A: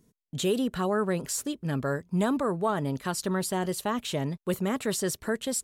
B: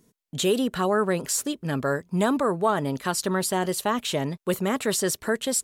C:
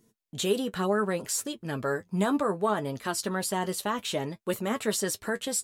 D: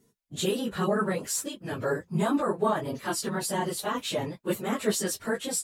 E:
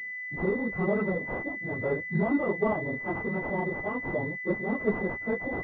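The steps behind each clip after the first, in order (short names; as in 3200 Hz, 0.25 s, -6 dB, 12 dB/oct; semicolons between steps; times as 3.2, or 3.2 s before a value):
low shelf 190 Hz -8 dB; gain +5.5 dB
flange 0.65 Hz, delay 8.7 ms, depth 1.7 ms, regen +39%
phase scrambler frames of 50 ms
pulse-width modulation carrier 2000 Hz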